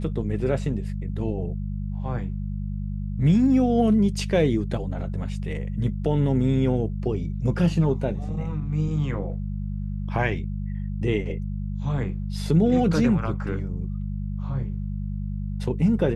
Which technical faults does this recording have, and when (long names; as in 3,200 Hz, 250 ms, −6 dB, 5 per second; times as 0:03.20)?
mains hum 50 Hz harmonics 4 −29 dBFS